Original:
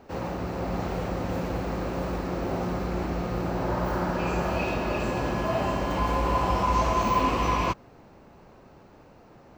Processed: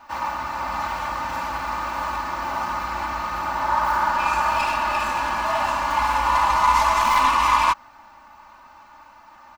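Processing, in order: tracing distortion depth 0.078 ms; resonant low shelf 670 Hz -13.5 dB, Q 3; comb 3.4 ms, depth 89%; gain +4.5 dB

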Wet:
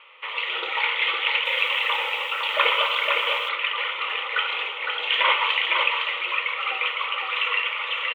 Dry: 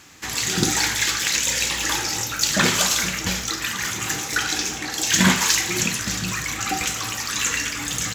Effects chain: Chebyshev band-pass 500–3200 Hz, order 4; fixed phaser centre 1100 Hz, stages 8; echo 0.509 s -4.5 dB; 1.33–3.49 lo-fi delay 0.122 s, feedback 55%, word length 8-bit, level -11 dB; gain +5 dB

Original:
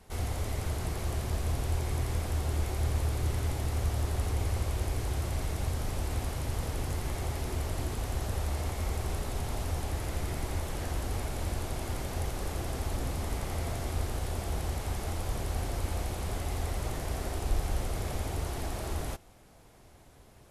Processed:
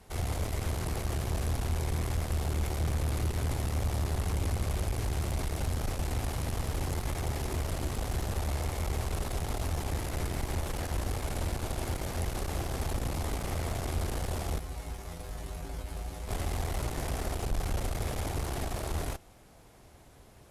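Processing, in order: tube stage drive 29 dB, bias 0.65; 14.59–16.28 resonator 56 Hz, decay 0.21 s, harmonics odd, mix 90%; gain +4.5 dB

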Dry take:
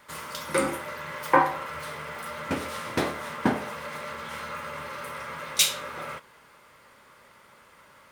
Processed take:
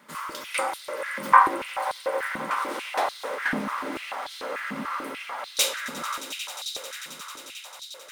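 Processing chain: swelling echo 89 ms, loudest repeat 8, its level -17.5 dB; stepped high-pass 6.8 Hz 210–4000 Hz; gain -2 dB

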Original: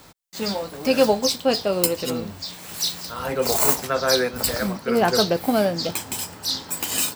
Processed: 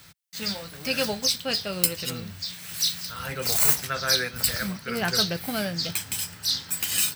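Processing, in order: HPF 67 Hz; band shelf 500 Hz -12 dB 2.6 oct; notch 7100 Hz, Q 13

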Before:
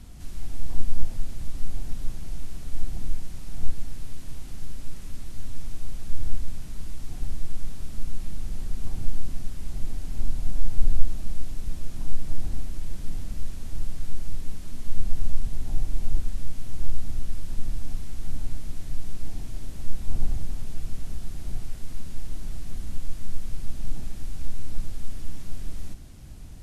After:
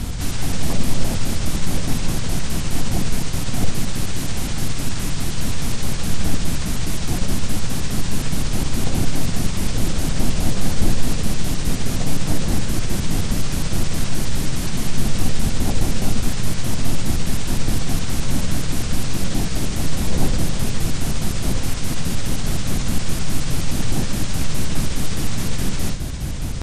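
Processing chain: trilling pitch shifter -6 st, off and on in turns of 0.104 s; spectral compressor 2:1

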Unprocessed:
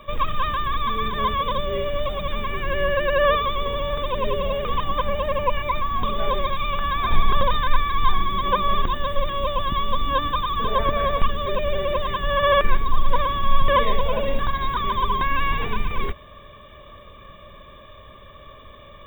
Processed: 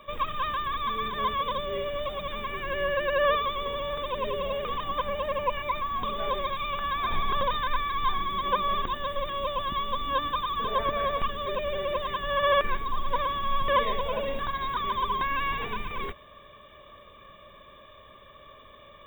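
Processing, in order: low shelf 170 Hz -9.5 dB; 4.3–4.9 negative-ratio compressor -24 dBFS; gain -4.5 dB

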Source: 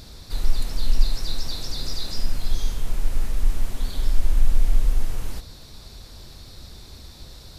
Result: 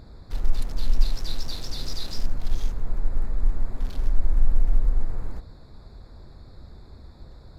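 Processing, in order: Wiener smoothing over 15 samples; gain -1.5 dB

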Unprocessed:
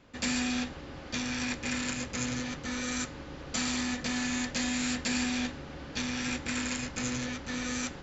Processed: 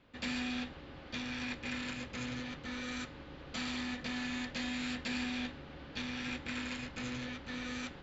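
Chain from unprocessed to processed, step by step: resonant high shelf 4900 Hz -8.5 dB, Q 1.5; gain -6.5 dB

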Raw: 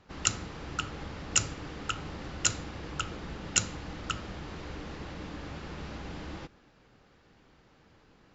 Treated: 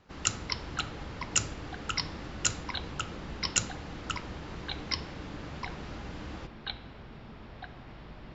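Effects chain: echoes that change speed 0.161 s, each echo -5 st, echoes 2, each echo -6 dB; gain -1.5 dB

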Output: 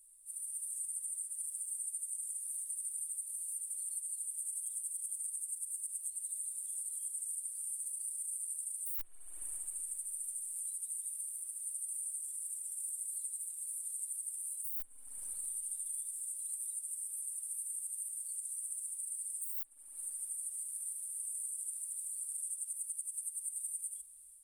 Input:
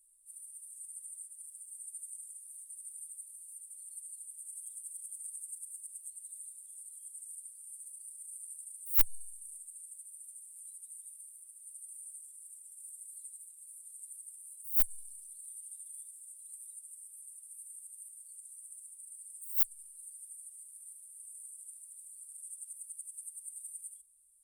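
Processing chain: AGC gain up to 5.5 dB; spring tank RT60 2.7 s, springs 38/53 ms, chirp 30 ms, DRR 18 dB; compressor 12:1, threshold -41 dBFS, peak gain reduction 26.5 dB; gain +5 dB

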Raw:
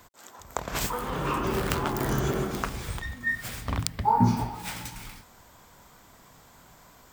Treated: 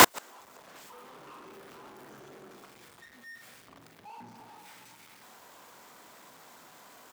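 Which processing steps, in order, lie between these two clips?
zero-crossing step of -22.5 dBFS; HPF 270 Hz 12 dB/oct; high shelf 4000 Hz -5 dB; sample leveller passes 3; doubler 43 ms -11 dB; flipped gate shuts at -13 dBFS, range -41 dB; gain +6.5 dB

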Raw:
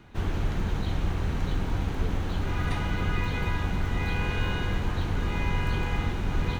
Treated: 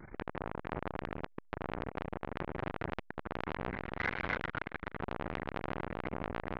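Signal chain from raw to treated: brick-wall FIR low-pass 2300 Hz; echo 0.169 s -8.5 dB; reverb RT60 1.0 s, pre-delay 5 ms, DRR 9.5 dB; wow and flutter 91 cents; notches 60/120/180/240/300/360/420 Hz; 3.72–5.02 tilt +3 dB/oct; compressor 4:1, threshold -27 dBFS, peak gain reduction 8 dB; core saturation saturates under 1600 Hz; gain +5 dB

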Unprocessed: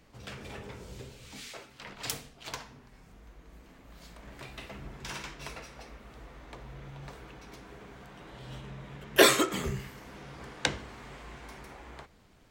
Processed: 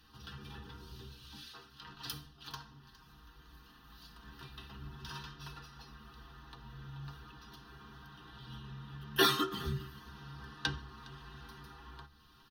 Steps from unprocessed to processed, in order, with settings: fixed phaser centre 2200 Hz, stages 6; metallic resonator 70 Hz, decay 0.21 s, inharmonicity 0.008; echo 0.411 s -23 dB; mismatched tape noise reduction encoder only; gain +3 dB

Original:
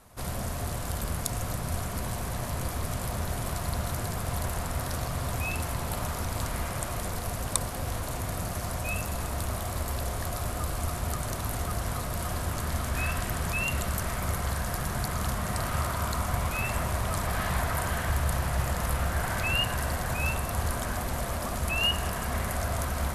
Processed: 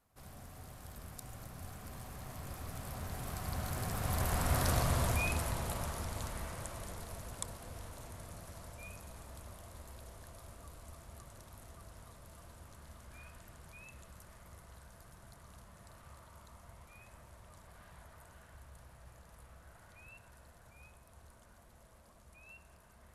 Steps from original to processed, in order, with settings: Doppler pass-by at 4.73, 19 m/s, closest 8.7 m; gain +1 dB

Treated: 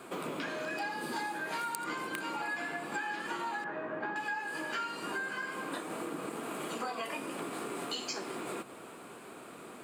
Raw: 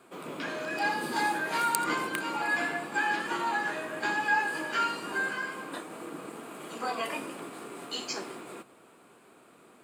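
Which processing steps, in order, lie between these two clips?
3.64–4.16 LPF 1500 Hz 12 dB/oct; compressor 6:1, threshold -44 dBFS, peak gain reduction 20.5 dB; gain +8.5 dB

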